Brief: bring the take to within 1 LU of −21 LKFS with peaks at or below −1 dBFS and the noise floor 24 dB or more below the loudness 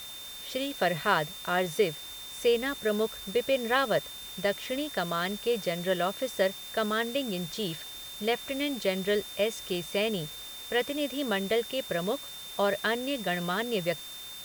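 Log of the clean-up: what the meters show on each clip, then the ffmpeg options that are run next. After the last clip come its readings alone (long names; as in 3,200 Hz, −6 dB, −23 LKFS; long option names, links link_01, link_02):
interfering tone 3,600 Hz; level of the tone −42 dBFS; background noise floor −43 dBFS; target noise floor −54 dBFS; integrated loudness −30.0 LKFS; sample peak −11.0 dBFS; target loudness −21.0 LKFS
→ -af "bandreject=frequency=3600:width=30"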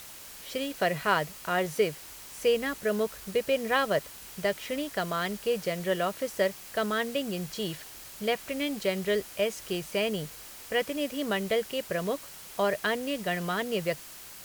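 interfering tone none found; background noise floor −46 dBFS; target noise floor −54 dBFS
→ -af "afftdn=noise_reduction=8:noise_floor=-46"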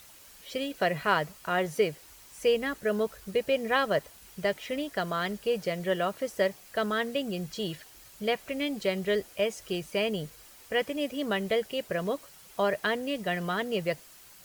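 background noise floor −53 dBFS; target noise floor −55 dBFS
→ -af "afftdn=noise_reduction=6:noise_floor=-53"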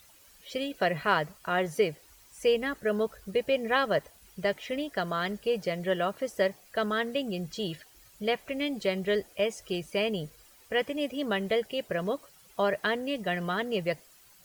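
background noise floor −58 dBFS; integrated loudness −30.5 LKFS; sample peak −11.5 dBFS; target loudness −21.0 LKFS
→ -af "volume=9.5dB"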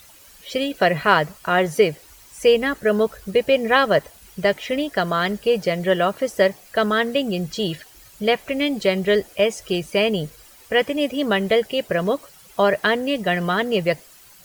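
integrated loudness −21.0 LKFS; sample peak −2.0 dBFS; background noise floor −48 dBFS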